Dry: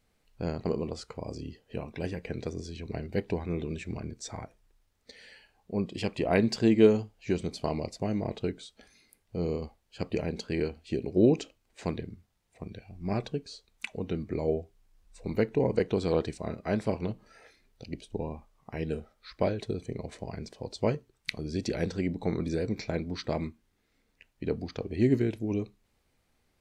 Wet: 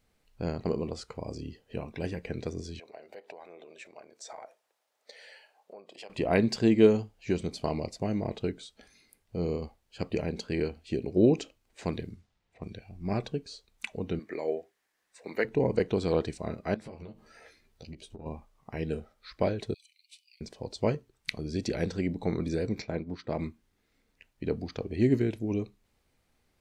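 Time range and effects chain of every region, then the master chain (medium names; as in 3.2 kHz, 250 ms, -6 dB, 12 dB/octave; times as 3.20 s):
2.79–6.10 s: compression, threshold -41 dBFS + resonant high-pass 610 Hz, resonance Q 2.3
11.91–12.76 s: level-controlled noise filter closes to 2.7 kHz, open at -33.5 dBFS + treble shelf 4.4 kHz +8 dB
14.19–15.45 s: high-pass 400 Hz + peaking EQ 1.8 kHz +10.5 dB 0.43 oct
16.74–18.26 s: compression 5:1, threshold -42 dBFS + doubling 13 ms -5 dB
19.74–20.41 s: steep high-pass 2.5 kHz 72 dB/octave + peaking EQ 6.7 kHz -8.5 dB 0.37 oct
22.82–23.39 s: high-pass 87 Hz 6 dB/octave + treble shelf 2.9 kHz -10 dB + transient shaper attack -2 dB, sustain -6 dB
whole clip: none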